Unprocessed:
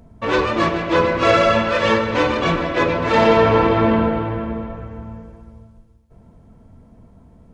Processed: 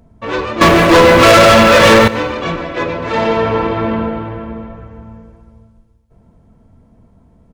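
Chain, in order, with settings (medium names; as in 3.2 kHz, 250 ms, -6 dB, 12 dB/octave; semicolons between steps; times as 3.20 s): 0.61–2.08 s: waveshaping leveller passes 5; feedback delay 121 ms, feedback 40%, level -19.5 dB; trim -1 dB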